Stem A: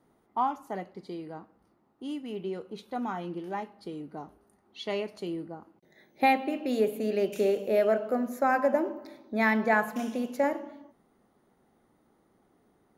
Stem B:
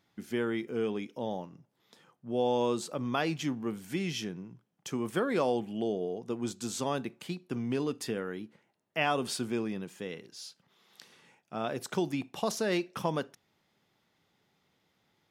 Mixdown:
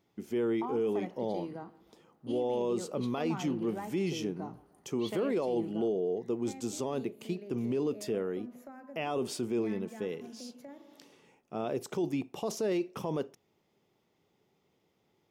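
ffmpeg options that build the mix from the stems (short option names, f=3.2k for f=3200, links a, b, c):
-filter_complex "[0:a]acrossover=split=280[a][b];[b]acompressor=threshold=-37dB:ratio=6[c];[a][c]amix=inputs=2:normalize=0,adelay=250,volume=-1dB,afade=t=out:st=5.73:d=0.3:silence=0.237137,asplit=2[d][e];[e]volume=-22.5dB[f];[1:a]equalizer=f=400:t=o:w=0.67:g=7,equalizer=f=1.6k:t=o:w=0.67:g=-8,equalizer=f=4k:t=o:w=0.67:g=-6,equalizer=f=10k:t=o:w=0.67:g=-5,volume=-0.5dB[g];[f]aecho=0:1:156|312|468|624|780|936|1092|1248|1404:1|0.58|0.336|0.195|0.113|0.0656|0.0381|0.0221|0.0128[h];[d][g][h]amix=inputs=3:normalize=0,alimiter=limit=-23.5dB:level=0:latency=1:release=16"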